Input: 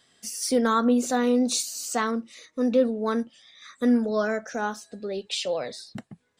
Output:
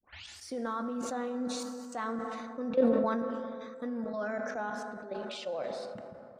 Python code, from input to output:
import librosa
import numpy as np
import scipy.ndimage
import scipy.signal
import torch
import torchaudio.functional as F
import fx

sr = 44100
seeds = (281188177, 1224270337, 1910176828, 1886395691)

y = fx.tape_start_head(x, sr, length_s=0.44)
y = fx.lowpass(y, sr, hz=3000.0, slope=6)
y = fx.peak_eq(y, sr, hz=790.0, db=6.0, octaves=2.4)
y = fx.notch(y, sr, hz=430.0, q=12.0)
y = fx.level_steps(y, sr, step_db=13)
y = fx.rev_plate(y, sr, seeds[0], rt60_s=4.0, hf_ratio=0.35, predelay_ms=0, drr_db=9.0)
y = fx.sustainer(y, sr, db_per_s=25.0)
y = y * librosa.db_to_amplitude(-9.0)